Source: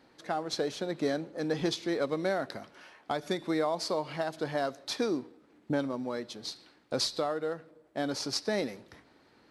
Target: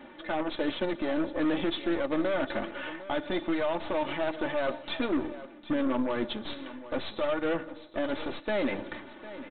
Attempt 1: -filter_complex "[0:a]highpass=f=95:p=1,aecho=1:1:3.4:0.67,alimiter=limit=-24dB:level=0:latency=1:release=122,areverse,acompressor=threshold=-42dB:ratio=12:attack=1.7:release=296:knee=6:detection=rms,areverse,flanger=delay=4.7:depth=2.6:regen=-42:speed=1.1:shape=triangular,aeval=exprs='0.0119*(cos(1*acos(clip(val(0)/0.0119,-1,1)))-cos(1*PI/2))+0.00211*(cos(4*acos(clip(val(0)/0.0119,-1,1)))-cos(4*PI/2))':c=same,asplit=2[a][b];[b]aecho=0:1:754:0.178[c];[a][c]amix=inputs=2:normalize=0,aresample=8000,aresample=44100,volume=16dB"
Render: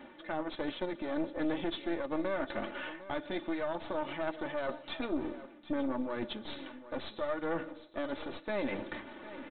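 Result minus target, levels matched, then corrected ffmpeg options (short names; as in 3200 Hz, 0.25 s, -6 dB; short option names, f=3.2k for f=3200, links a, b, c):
compressor: peak gain reduction +6.5 dB
-filter_complex "[0:a]highpass=f=95:p=1,aecho=1:1:3.4:0.67,alimiter=limit=-24dB:level=0:latency=1:release=122,areverse,acompressor=threshold=-35dB:ratio=12:attack=1.7:release=296:knee=6:detection=rms,areverse,flanger=delay=4.7:depth=2.6:regen=-42:speed=1.1:shape=triangular,aeval=exprs='0.0119*(cos(1*acos(clip(val(0)/0.0119,-1,1)))-cos(1*PI/2))+0.00211*(cos(4*acos(clip(val(0)/0.0119,-1,1)))-cos(4*PI/2))':c=same,asplit=2[a][b];[b]aecho=0:1:754:0.178[c];[a][c]amix=inputs=2:normalize=0,aresample=8000,aresample=44100,volume=16dB"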